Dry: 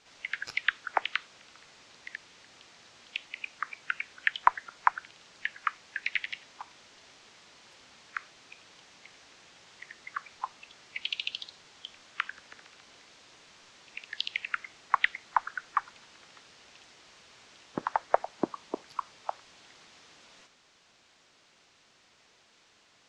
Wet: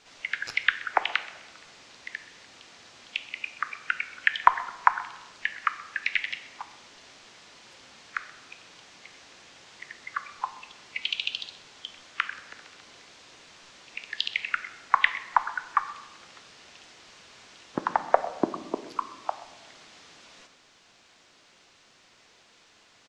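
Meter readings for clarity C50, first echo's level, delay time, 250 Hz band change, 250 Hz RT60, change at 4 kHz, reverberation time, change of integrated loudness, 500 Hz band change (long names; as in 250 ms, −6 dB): 13.0 dB, −19.5 dB, 128 ms, +5.0 dB, 1.8 s, +4.5 dB, 1.2 s, +4.5 dB, +4.5 dB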